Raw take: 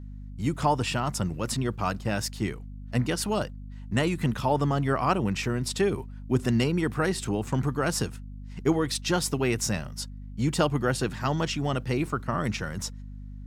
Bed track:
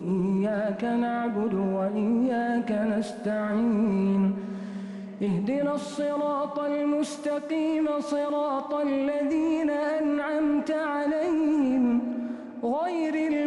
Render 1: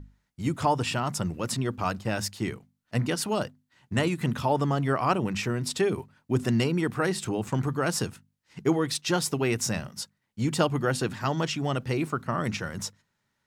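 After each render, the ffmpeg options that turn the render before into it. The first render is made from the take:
ffmpeg -i in.wav -af "bandreject=frequency=50:width_type=h:width=6,bandreject=frequency=100:width_type=h:width=6,bandreject=frequency=150:width_type=h:width=6,bandreject=frequency=200:width_type=h:width=6,bandreject=frequency=250:width_type=h:width=6" out.wav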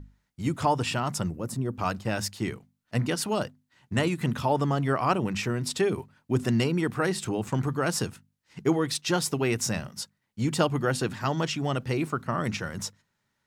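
ffmpeg -i in.wav -filter_complex "[0:a]asplit=3[link_01][link_02][link_03];[link_01]afade=type=out:start_time=1.29:duration=0.02[link_04];[link_02]equalizer=frequency=3000:width=0.46:gain=-15,afade=type=in:start_time=1.29:duration=0.02,afade=type=out:start_time=1.75:duration=0.02[link_05];[link_03]afade=type=in:start_time=1.75:duration=0.02[link_06];[link_04][link_05][link_06]amix=inputs=3:normalize=0" out.wav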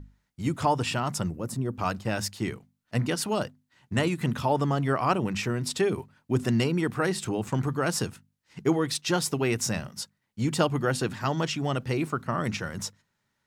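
ffmpeg -i in.wav -af anull out.wav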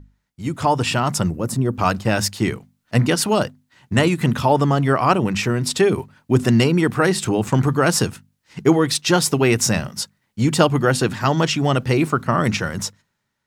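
ffmpeg -i in.wav -af "dynaudnorm=framelen=100:gausssize=13:maxgain=11dB" out.wav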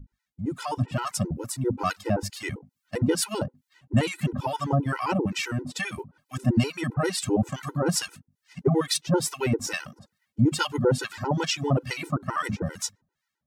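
ffmpeg -i in.wav -filter_complex "[0:a]acrossover=split=980[link_01][link_02];[link_01]aeval=exprs='val(0)*(1-1/2+1/2*cos(2*PI*2.3*n/s))':channel_layout=same[link_03];[link_02]aeval=exprs='val(0)*(1-1/2-1/2*cos(2*PI*2.3*n/s))':channel_layout=same[link_04];[link_03][link_04]amix=inputs=2:normalize=0,afftfilt=real='re*gt(sin(2*PI*7.6*pts/sr)*(1-2*mod(floor(b*sr/1024/260),2)),0)':imag='im*gt(sin(2*PI*7.6*pts/sr)*(1-2*mod(floor(b*sr/1024/260),2)),0)':win_size=1024:overlap=0.75" out.wav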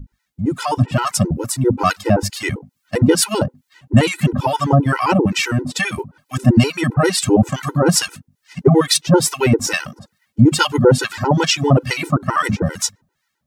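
ffmpeg -i in.wav -af "volume=10.5dB,alimiter=limit=-1dB:level=0:latency=1" out.wav

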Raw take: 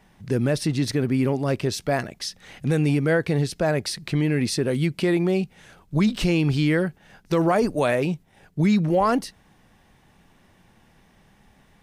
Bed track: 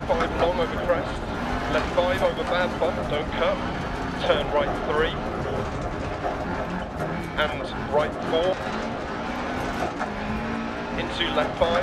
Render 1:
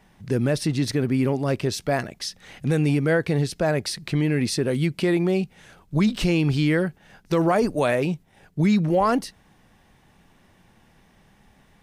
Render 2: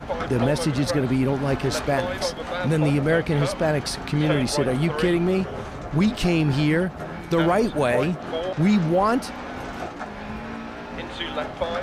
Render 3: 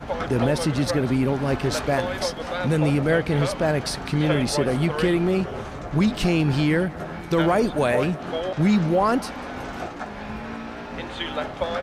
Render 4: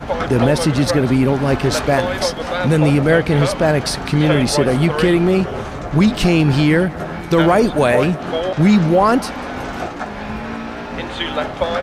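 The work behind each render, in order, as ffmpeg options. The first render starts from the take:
ffmpeg -i in.wav -af anull out.wav
ffmpeg -i in.wav -i bed.wav -filter_complex "[1:a]volume=-5dB[link_01];[0:a][link_01]amix=inputs=2:normalize=0" out.wav
ffmpeg -i in.wav -af "aecho=1:1:194:0.0891" out.wav
ffmpeg -i in.wav -af "volume=7dB,alimiter=limit=-3dB:level=0:latency=1" out.wav

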